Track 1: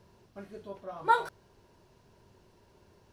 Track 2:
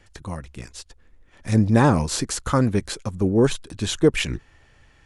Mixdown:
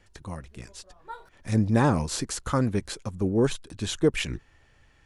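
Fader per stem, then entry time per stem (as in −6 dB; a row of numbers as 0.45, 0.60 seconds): −16.0, −5.0 decibels; 0.00, 0.00 seconds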